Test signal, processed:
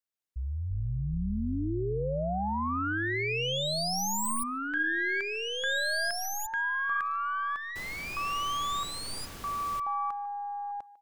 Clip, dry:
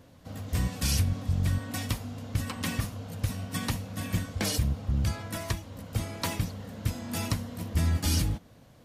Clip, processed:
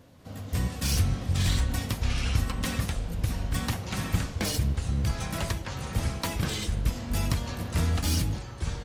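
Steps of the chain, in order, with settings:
stylus tracing distortion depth 0.023 ms
delay with pitch and tempo change per echo 195 ms, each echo −6 semitones, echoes 2
far-end echo of a speakerphone 150 ms, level −18 dB

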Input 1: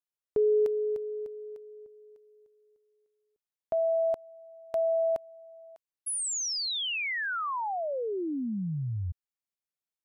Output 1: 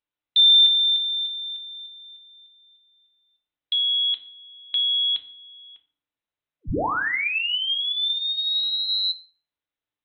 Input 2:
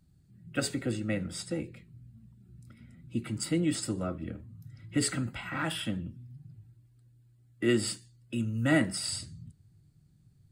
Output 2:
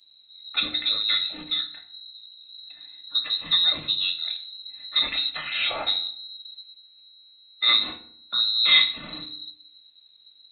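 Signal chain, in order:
voice inversion scrambler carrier 4,000 Hz
feedback delay network reverb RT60 0.54 s, low-frequency decay 1.5×, high-frequency decay 0.65×, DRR 5 dB
level +6 dB

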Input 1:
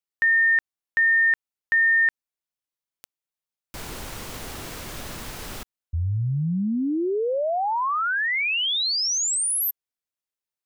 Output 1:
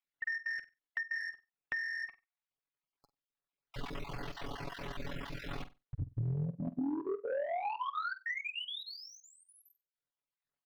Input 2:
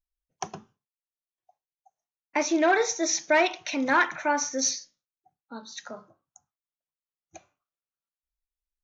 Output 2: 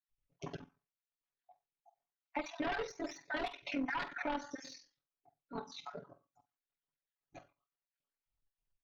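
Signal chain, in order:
time-frequency cells dropped at random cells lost 36%
amplitude modulation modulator 43 Hz, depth 85%
flanger 0.28 Hz, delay 0.4 ms, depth 2.7 ms, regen +88%
transient designer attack −10 dB, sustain −6 dB
sine wavefolder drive 11 dB, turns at −20 dBFS
high-shelf EQ 4,300 Hz +9 dB
comb filter 7.1 ms, depth 99%
flutter between parallel walls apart 8.1 metres, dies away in 0.2 s
downward compressor 5 to 1, threshold −31 dBFS
high-frequency loss of the air 340 metres
level −2.5 dB

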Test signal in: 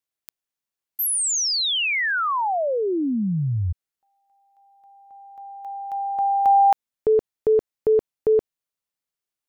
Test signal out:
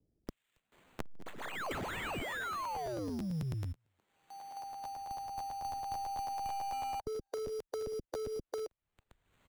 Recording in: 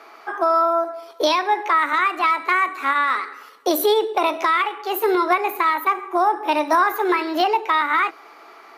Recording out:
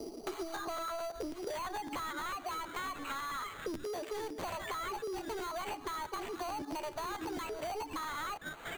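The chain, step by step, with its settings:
stylus tracing distortion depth 0.022 ms
three-band delay without the direct sound lows, mids, highs 270/720 ms, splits 410/3,900 Hz
reverb reduction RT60 1.1 s
in parallel at −4 dB: floating-point word with a short mantissa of 2 bits
on the sum: brickwall limiter −11 dBFS
soft clipping −20.5 dBFS
downward compressor 4 to 1, threshold −32 dBFS
sample-rate reduction 5,300 Hz, jitter 0%
spectral tilt −1.5 dB per octave
regular buffer underruns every 0.11 s, samples 512, repeat, from 0:00.54
multiband upward and downward compressor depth 100%
level −7.5 dB

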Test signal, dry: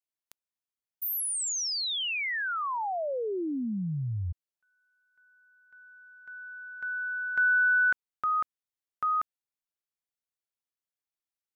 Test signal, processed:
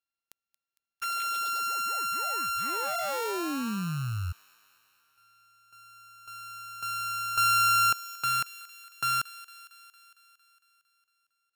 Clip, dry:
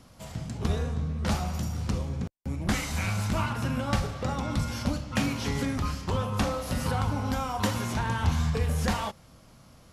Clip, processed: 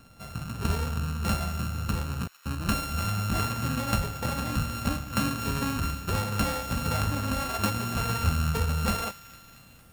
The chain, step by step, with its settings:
samples sorted by size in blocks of 32 samples
delay with a high-pass on its return 228 ms, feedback 65%, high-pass 1,600 Hz, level −15.5 dB

